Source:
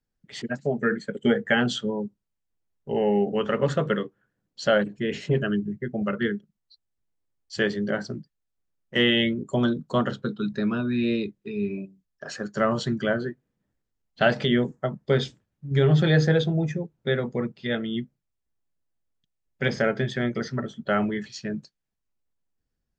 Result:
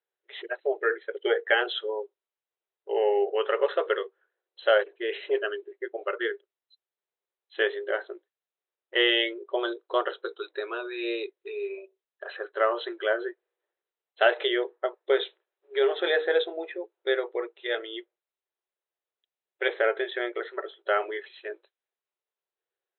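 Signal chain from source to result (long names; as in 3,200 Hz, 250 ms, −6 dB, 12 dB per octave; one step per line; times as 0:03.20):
linear-phase brick-wall band-pass 340–4,100 Hz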